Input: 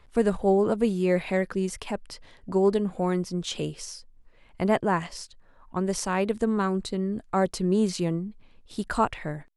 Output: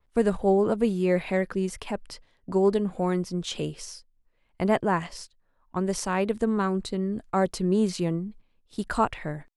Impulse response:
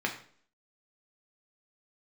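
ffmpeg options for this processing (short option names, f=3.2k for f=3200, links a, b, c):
-af "adynamicequalizer=threshold=0.00355:dfrequency=6800:dqfactor=0.75:tfrequency=6800:tqfactor=0.75:attack=5:release=100:ratio=0.375:range=1.5:mode=cutabove:tftype=bell,agate=range=-13dB:threshold=-44dB:ratio=16:detection=peak"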